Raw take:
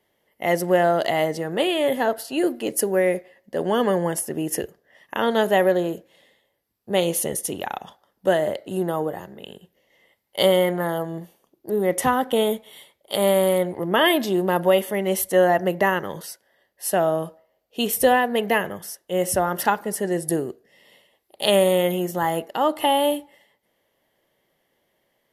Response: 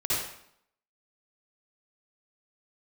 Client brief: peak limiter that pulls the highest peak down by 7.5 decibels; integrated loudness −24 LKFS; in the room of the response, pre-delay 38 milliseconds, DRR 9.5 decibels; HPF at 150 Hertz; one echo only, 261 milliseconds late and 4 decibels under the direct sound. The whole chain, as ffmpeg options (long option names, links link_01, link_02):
-filter_complex "[0:a]highpass=150,alimiter=limit=-10.5dB:level=0:latency=1,aecho=1:1:261:0.631,asplit=2[link_01][link_02];[1:a]atrim=start_sample=2205,adelay=38[link_03];[link_02][link_03]afir=irnorm=-1:irlink=0,volume=-19dB[link_04];[link_01][link_04]amix=inputs=2:normalize=0,volume=-2dB"